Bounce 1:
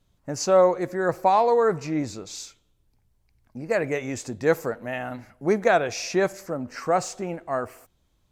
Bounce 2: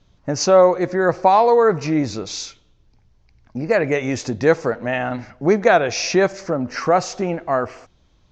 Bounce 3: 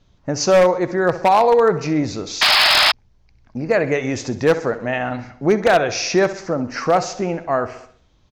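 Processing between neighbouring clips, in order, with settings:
steep low-pass 6.4 kHz 48 dB/octave; in parallel at +1 dB: compression, threshold -29 dBFS, peak gain reduction 15 dB; on the sum: trim +3.5 dB
feedback delay 65 ms, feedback 52%, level -14.5 dB; painted sound noise, 2.41–2.92 s, 580–5300 Hz -13 dBFS; wavefolder -6.5 dBFS

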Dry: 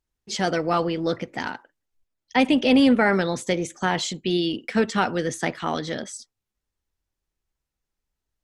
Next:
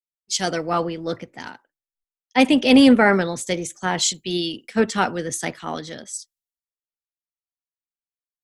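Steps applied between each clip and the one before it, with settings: treble shelf 6.7 kHz +11 dB; three bands expanded up and down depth 100%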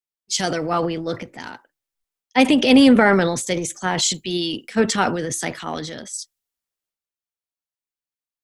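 transient shaper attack +1 dB, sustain +8 dB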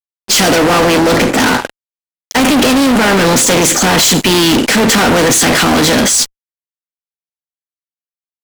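spectral levelling over time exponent 0.6; compression, threshold -15 dBFS, peak gain reduction 8.5 dB; fuzz box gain 33 dB, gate -40 dBFS; trim +5 dB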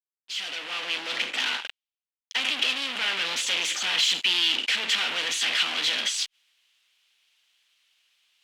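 fade-in on the opening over 1.29 s; reverse; upward compressor, threshold -16 dBFS; reverse; band-pass filter 3 kHz, Q 2.8; trim -5 dB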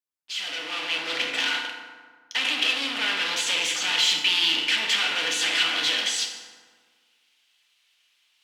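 FDN reverb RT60 1.6 s, low-frequency decay 1.1×, high-frequency decay 0.55×, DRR 2 dB

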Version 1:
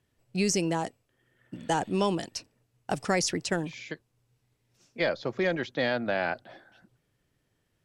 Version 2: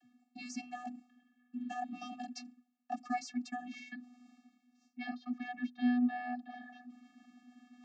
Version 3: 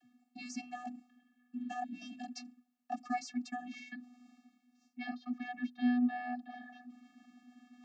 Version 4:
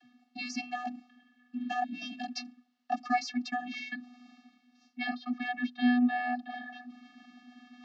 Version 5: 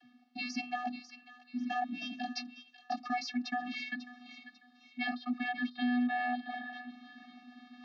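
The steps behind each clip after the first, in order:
vocoder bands 32, square 246 Hz; reverse; upward compressor, threshold -30 dBFS; reverse; trim -8 dB
time-frequency box 1.85–2.21 s, 690–1500 Hz -22 dB
low-pass 4.8 kHz 24 dB/octave; tilt EQ +2 dB/octave; band-stop 2.4 kHz, Q 13; trim +8.5 dB
low-pass 5.6 kHz 24 dB/octave; peak limiter -26 dBFS, peak gain reduction 8 dB; feedback echo behind a high-pass 545 ms, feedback 34%, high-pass 1.7 kHz, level -11 dB

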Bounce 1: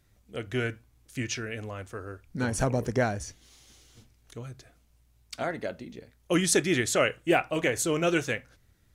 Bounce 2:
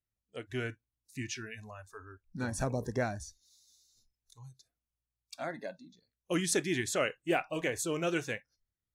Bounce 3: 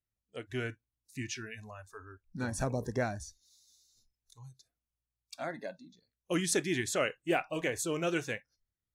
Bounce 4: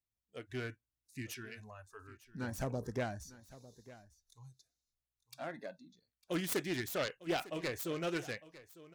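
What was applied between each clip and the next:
spectral noise reduction 22 dB; trim -6.5 dB
no audible change
self-modulated delay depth 0.2 ms; delay 902 ms -18 dB; trim -4.5 dB

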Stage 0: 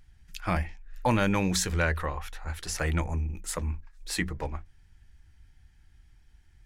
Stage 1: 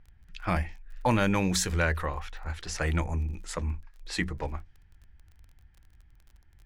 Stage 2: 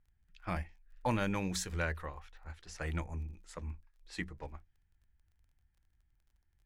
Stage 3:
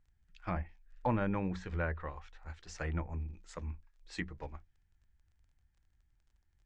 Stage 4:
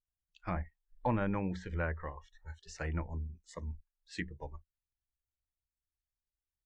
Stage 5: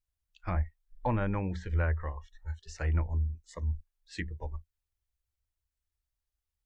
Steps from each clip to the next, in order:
level-controlled noise filter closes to 2 kHz, open at -25.5 dBFS; crackle 27 per s -45 dBFS
upward expansion 1.5:1, over -40 dBFS; trim -7 dB
Chebyshev low-pass 7.7 kHz, order 3; low-pass that closes with the level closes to 1.6 kHz, closed at -32.5 dBFS; trim +1 dB
spectral noise reduction 24 dB
resonant low shelf 110 Hz +6.5 dB, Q 1.5; trim +1.5 dB

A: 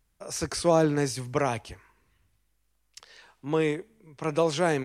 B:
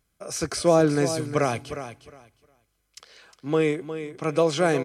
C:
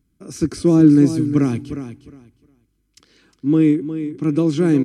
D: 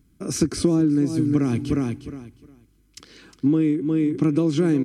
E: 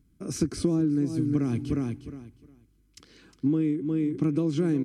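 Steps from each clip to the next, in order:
comb of notches 920 Hz; on a send: feedback delay 358 ms, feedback 19%, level -11 dB; on the sum: trim +3.5 dB
resonant low shelf 420 Hz +12 dB, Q 3; trim -4.5 dB
compression 16:1, threshold -23 dBFS, peak gain reduction 17.5 dB; trim +7 dB
bass shelf 320 Hz +4.5 dB; trim -8 dB

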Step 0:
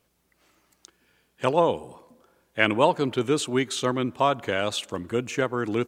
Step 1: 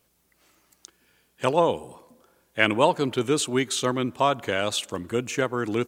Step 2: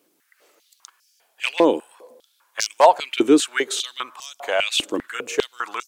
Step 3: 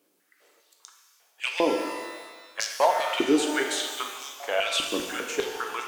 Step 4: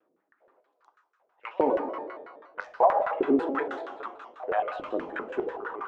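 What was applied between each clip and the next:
treble shelf 5.4 kHz +6.5 dB
wavefolder -10 dBFS; step-sequenced high-pass 5 Hz 310–5500 Hz; trim +1.5 dB
compression 1.5:1, threshold -20 dBFS, peak gain reduction 5 dB; pitch-shifted reverb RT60 1.4 s, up +12 st, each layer -8 dB, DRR 2.5 dB; trim -5 dB
LFO low-pass saw down 6.2 Hz 490–1500 Hz; vibrato with a chosen wave square 5.3 Hz, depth 160 cents; trim -4 dB

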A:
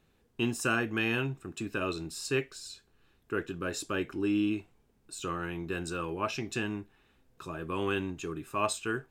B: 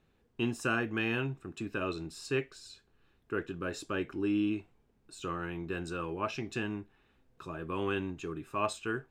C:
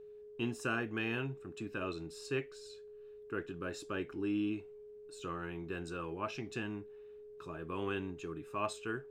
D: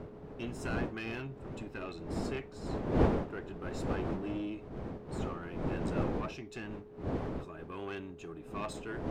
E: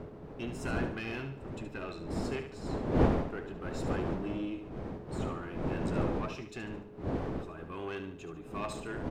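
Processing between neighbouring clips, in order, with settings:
treble shelf 5.8 kHz -10.5 dB; trim -1.5 dB
whistle 420 Hz -45 dBFS; trim -4.5 dB
single-diode clipper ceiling -33 dBFS; wind noise 390 Hz -36 dBFS; trim -1.5 dB
feedback delay 73 ms, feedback 41%, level -9.5 dB; trim +1 dB

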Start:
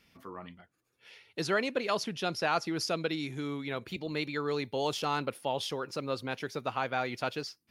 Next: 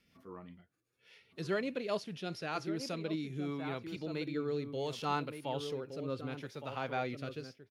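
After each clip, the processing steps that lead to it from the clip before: echo from a far wall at 200 m, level -8 dB; rotary cabinet horn 5 Hz, later 0.7 Hz, at 2.30 s; harmonic-percussive split percussive -9 dB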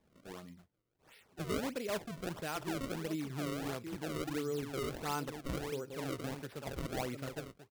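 in parallel at 0 dB: peak limiter -30 dBFS, peak gain reduction 10 dB; on the sum: decimation with a swept rate 30×, swing 160% 1.5 Hz; trim -6 dB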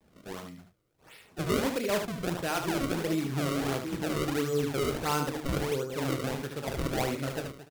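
vibrato 0.44 Hz 30 cents; on a send: early reflections 29 ms -11 dB, 75 ms -7 dB; on the sum: trim +7.5 dB

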